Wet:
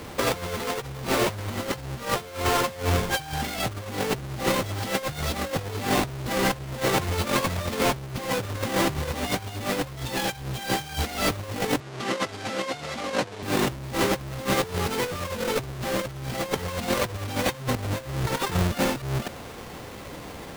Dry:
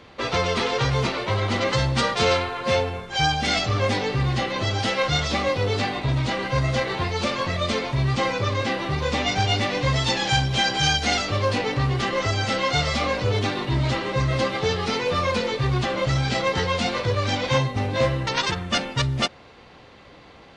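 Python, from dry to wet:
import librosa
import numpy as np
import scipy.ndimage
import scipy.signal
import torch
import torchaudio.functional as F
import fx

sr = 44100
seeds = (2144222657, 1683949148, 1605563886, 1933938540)

y = fx.halfwave_hold(x, sr)
y = fx.over_compress(y, sr, threshold_db=-24.0, ratio=-0.5)
y = fx.bandpass_edges(y, sr, low_hz=180.0, high_hz=7200.0, at=(11.8, 13.43))
y = y * 10.0 ** (-2.5 / 20.0)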